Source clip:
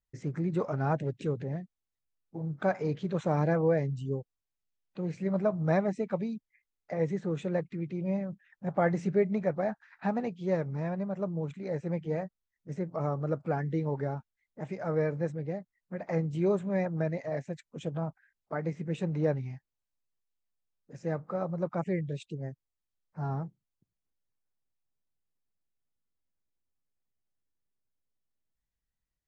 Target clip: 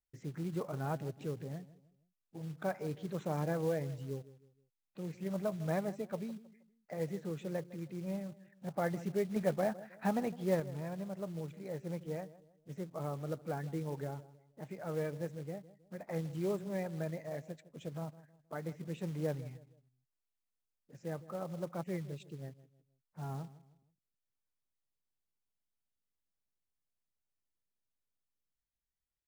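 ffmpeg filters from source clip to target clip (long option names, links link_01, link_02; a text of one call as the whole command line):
ffmpeg -i in.wav -filter_complex "[0:a]asettb=1/sr,asplit=3[link_01][link_02][link_03];[link_01]atrim=end=9.364[link_04];[link_02]atrim=start=9.36:end=10.6,asetpts=PTS-STARTPTS,afade=type=in:duration=0.004:curve=qsin,afade=type=out:start_time=1.236:duration=0.004:curve=qsin,acontrast=37[link_05];[link_03]atrim=start=10.596[link_06];[link_04][link_05]acrossfade=duration=0.004:curve1=hsin:curve2=qsin[link_07];[link_07][link_06]acrossfade=duration=0.004:curve1=qsin:curve2=hsin,asplit=2[link_08][link_09];[link_09]adelay=158,lowpass=frequency=1200:poles=1,volume=-16.5dB,asplit=2[link_10][link_11];[link_11]adelay=158,lowpass=frequency=1200:poles=1,volume=0.38,asplit=2[link_12][link_13];[link_13]adelay=158,lowpass=frequency=1200:poles=1,volume=0.38[link_14];[link_08][link_10][link_12][link_14]amix=inputs=4:normalize=0,acrusher=bits=5:mode=log:mix=0:aa=0.000001,volume=-8dB" out.wav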